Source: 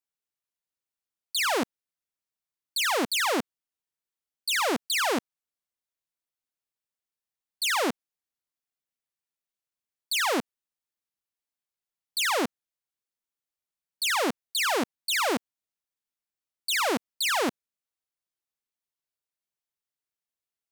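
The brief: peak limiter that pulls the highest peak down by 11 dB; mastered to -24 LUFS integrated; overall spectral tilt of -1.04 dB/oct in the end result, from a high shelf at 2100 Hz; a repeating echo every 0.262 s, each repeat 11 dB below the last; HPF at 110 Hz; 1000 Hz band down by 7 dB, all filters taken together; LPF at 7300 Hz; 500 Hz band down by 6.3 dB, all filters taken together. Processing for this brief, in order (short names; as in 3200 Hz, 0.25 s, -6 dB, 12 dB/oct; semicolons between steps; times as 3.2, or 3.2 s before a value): HPF 110 Hz; LPF 7300 Hz; bell 500 Hz -6 dB; bell 1000 Hz -6 dB; high shelf 2100 Hz -5.5 dB; limiter -32.5 dBFS; feedback echo 0.262 s, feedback 28%, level -11 dB; gain +15.5 dB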